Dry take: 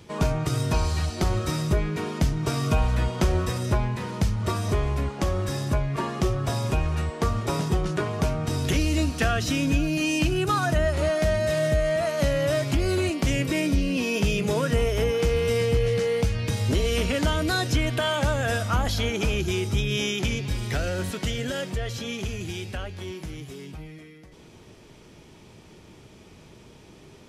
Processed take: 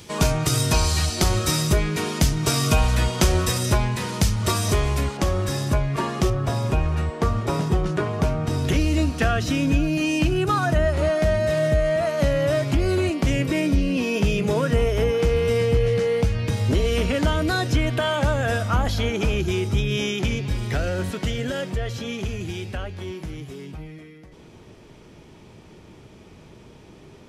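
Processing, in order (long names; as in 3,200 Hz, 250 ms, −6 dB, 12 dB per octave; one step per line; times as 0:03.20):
high-shelf EQ 2,900 Hz +11 dB, from 0:05.17 +2.5 dB, from 0:06.30 −6 dB
level +3 dB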